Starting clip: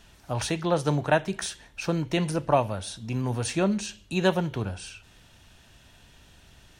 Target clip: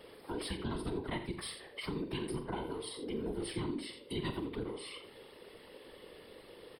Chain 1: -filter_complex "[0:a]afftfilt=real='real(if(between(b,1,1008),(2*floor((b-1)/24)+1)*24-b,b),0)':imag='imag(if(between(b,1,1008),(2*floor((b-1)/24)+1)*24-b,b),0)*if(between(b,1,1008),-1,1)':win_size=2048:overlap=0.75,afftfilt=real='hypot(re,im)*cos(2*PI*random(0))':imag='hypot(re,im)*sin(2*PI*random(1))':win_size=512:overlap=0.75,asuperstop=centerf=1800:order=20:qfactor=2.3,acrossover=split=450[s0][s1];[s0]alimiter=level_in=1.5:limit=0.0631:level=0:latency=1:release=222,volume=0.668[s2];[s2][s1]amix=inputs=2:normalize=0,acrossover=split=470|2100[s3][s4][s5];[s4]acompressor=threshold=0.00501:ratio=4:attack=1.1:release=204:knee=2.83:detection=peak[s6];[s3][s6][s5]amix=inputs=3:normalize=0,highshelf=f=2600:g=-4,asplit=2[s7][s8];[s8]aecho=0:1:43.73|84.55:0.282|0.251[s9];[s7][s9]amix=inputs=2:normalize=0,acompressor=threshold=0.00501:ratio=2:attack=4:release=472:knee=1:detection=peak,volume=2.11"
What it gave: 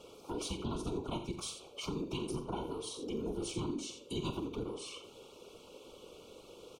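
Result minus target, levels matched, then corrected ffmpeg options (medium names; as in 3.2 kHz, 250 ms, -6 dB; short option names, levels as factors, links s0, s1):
2 kHz band -6.5 dB
-filter_complex "[0:a]afftfilt=real='real(if(between(b,1,1008),(2*floor((b-1)/24)+1)*24-b,b),0)':imag='imag(if(between(b,1,1008),(2*floor((b-1)/24)+1)*24-b,b),0)*if(between(b,1,1008),-1,1)':win_size=2048:overlap=0.75,afftfilt=real='hypot(re,im)*cos(2*PI*random(0))':imag='hypot(re,im)*sin(2*PI*random(1))':win_size=512:overlap=0.75,asuperstop=centerf=6600:order=20:qfactor=2.3,acrossover=split=450[s0][s1];[s0]alimiter=level_in=1.5:limit=0.0631:level=0:latency=1:release=222,volume=0.668[s2];[s2][s1]amix=inputs=2:normalize=0,acrossover=split=470|2100[s3][s4][s5];[s4]acompressor=threshold=0.00501:ratio=4:attack=1.1:release=204:knee=2.83:detection=peak[s6];[s3][s6][s5]amix=inputs=3:normalize=0,highshelf=f=2600:g=-4,asplit=2[s7][s8];[s8]aecho=0:1:43.73|84.55:0.282|0.251[s9];[s7][s9]amix=inputs=2:normalize=0,acompressor=threshold=0.00501:ratio=2:attack=4:release=472:knee=1:detection=peak,volume=2.11"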